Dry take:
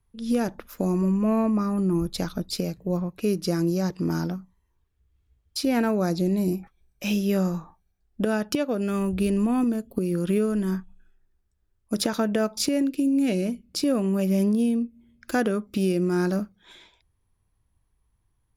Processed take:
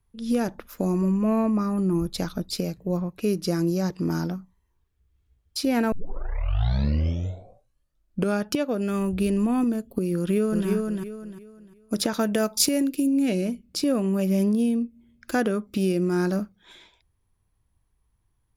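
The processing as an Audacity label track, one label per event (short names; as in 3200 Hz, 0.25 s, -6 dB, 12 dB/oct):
5.920000	5.920000	tape start 2.56 s
10.170000	10.680000	echo throw 0.35 s, feedback 30%, level -3 dB
12.190000	13.060000	high shelf 4400 Hz -> 8700 Hz +12 dB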